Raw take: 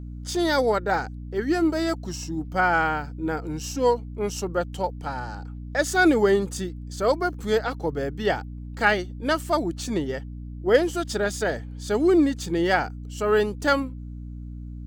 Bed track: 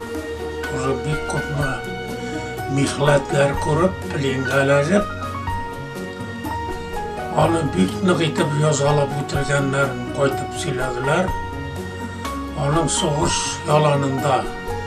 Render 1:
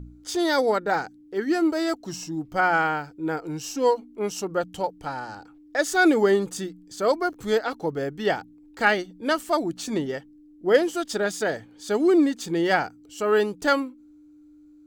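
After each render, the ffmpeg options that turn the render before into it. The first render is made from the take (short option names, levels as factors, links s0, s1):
-af "bandreject=f=60:t=h:w=4,bandreject=f=120:t=h:w=4,bandreject=f=180:t=h:w=4,bandreject=f=240:t=h:w=4"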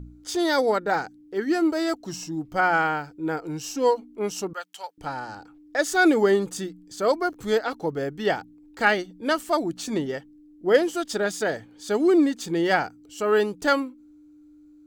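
-filter_complex "[0:a]asettb=1/sr,asplit=3[s0][s1][s2];[s0]atrim=end=4.534[s3];[s1]atrim=start=4.53:end=4.98,asetpts=PTS-STARTPTS,afade=t=in:d=0.004:c=qsin,afade=t=out:st=0.446:d=0.004:c=qsin,highpass=1300[s4];[s2]atrim=start=4.976[s5];[s3][s4]acrossfade=d=0.004:c1=hsin:c2=qsin[s6];[s6][s5]acrossfade=d=0.004:c1=qsin:c2=hsin"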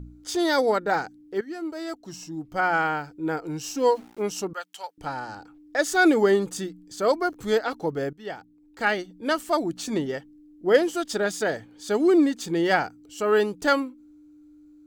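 -filter_complex "[0:a]asettb=1/sr,asplit=3[s0][s1][s2];[s0]atrim=end=3.634[s3];[s1]atrim=start=3.63:end=4.23,asetpts=PTS-STARTPTS,afade=t=in:d=0.004:c=qsin,afade=t=out:st=0.596:d=0.004:c=qsin,aeval=exprs='val(0)*gte(abs(val(0)),0.00473)':c=same[s4];[s2]atrim=start=4.226[s5];[s3][s4]acrossfade=d=0.004:c1=hsin:c2=qsin[s6];[s6][s5]acrossfade=d=0.004:c1=qsin:c2=hsin,asplit=3[s7][s8][s9];[s7]atrim=end=1.41,asetpts=PTS-STARTPTS,afade=t=out:st=1.406:d=0.004:c=hsin:silence=0.188365[s10];[s8]atrim=start=1.41:end=8.13,asetpts=PTS-STARTPTS,afade=t=in:d=1.7:silence=0.188365,afade=t=out:st=6.716:d=0.004:c=hsin:silence=0.149624[s11];[s9]atrim=start=8.13,asetpts=PTS-STARTPTS,afade=t=in:d=1.76:c=qsin:silence=0.149624[s12];[s10][s11][s12]concat=n=3:v=0:a=1"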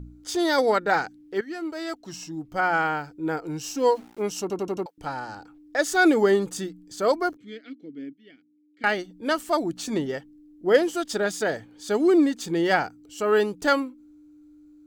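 -filter_complex "[0:a]asettb=1/sr,asplit=3[s0][s1][s2];[s0]atrim=end=0.584[s3];[s1]atrim=start=0.58:end=2.32,asetpts=PTS-STARTPTS,afade=t=in:d=0.004:c=qsin,afade=t=out:st=1.736:d=0.004:c=qsin,equalizer=f=2500:w=0.57:g=5[s4];[s2]atrim=start=2.316[s5];[s3][s4]acrossfade=d=0.004:c1=hsin:c2=qsin[s6];[s6][s5]acrossfade=d=0.004:c1=qsin:c2=hsin,asettb=1/sr,asplit=3[s7][s8][s9];[s7]atrim=end=7.374[s10];[s8]atrim=start=7.37:end=8.84,asetpts=PTS-STARTPTS,afade=t=in:d=0.004:c=qsin,afade=t=out:st=1.466:d=0.004:c=qsin,asplit=3[s11][s12][s13];[s11]bandpass=f=270:t=q:w=8,volume=1[s14];[s12]bandpass=f=2290:t=q:w=8,volume=0.501[s15];[s13]bandpass=f=3010:t=q:w=8,volume=0.355[s16];[s14][s15][s16]amix=inputs=3:normalize=0[s17];[s9]atrim=start=8.836[s18];[s10][s17]acrossfade=d=0.004:c1=hsin:c2=qsin[s19];[s19][s18]acrossfade=d=0.004:c1=qsin:c2=hsin,asplit=6[s20][s21][s22][s23][s24][s25];[s20]atrim=end=4.502[s26];[s21]atrim=start=4.408:end=4.502[s27];[s22]atrim=start=4.408:end=4.502[s28];[s23]atrim=start=4.408:end=4.502[s29];[s24]atrim=start=4.408:end=4.502[s30];[s25]atrim=start=4.858[s31];[s26][s27]acrossfade=d=0.004:c1=hsin:c2=hsin[s32];[s32][s28]acrossfade=d=0.004:c1=hsin:c2=hsin[s33];[s33][s29]acrossfade=d=0.004:c1=hsin:c2=hsin[s34];[s34][s30]acrossfade=d=0.004:c1=hsin:c2=hsin[s35];[s35][s31]acrossfade=d=0.004:c1=hsin:c2=hsin"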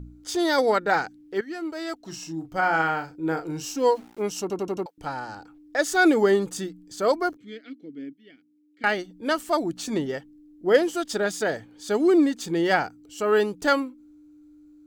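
-filter_complex "[0:a]asettb=1/sr,asplit=3[s0][s1][s2];[s0]atrim=end=1.994[s3];[s1]atrim=start=1.99:end=3.74,asetpts=PTS-STARTPTS,afade=t=in:d=0.004:c=qsin,afade=t=out:st=1.746:d=0.004:c=qsin,asplit=2[s4][s5];[s5]adelay=37,volume=0.398[s6];[s4][s6]amix=inputs=2:normalize=0,atrim=end_sample=77175[s7];[s2]atrim=start=3.736[s8];[s3][s7]acrossfade=d=0.004:c1=hsin:c2=qsin[s9];[s9][s8]acrossfade=d=0.004:c1=qsin:c2=hsin"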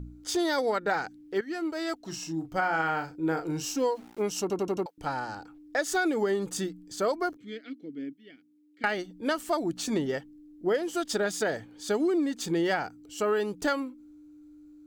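-af "acompressor=threshold=0.0708:ratio=12"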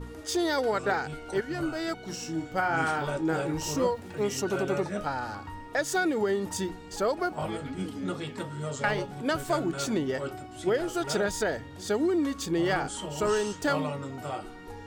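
-filter_complex "[1:a]volume=0.141[s0];[0:a][s0]amix=inputs=2:normalize=0"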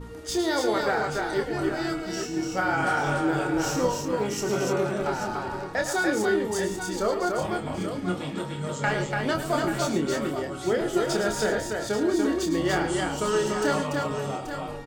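-filter_complex "[0:a]asplit=2[s0][s1];[s1]adelay=28,volume=0.501[s2];[s0][s2]amix=inputs=2:normalize=0,aecho=1:1:102|111|290|833:0.237|0.266|0.668|0.335"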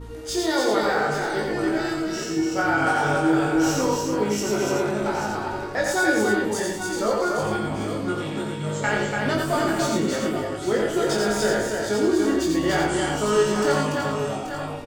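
-filter_complex "[0:a]asplit=2[s0][s1];[s1]adelay=19,volume=0.708[s2];[s0][s2]amix=inputs=2:normalize=0,aecho=1:1:87:0.668"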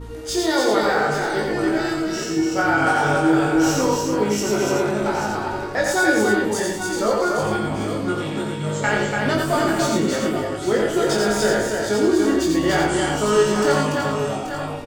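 -af "volume=1.41"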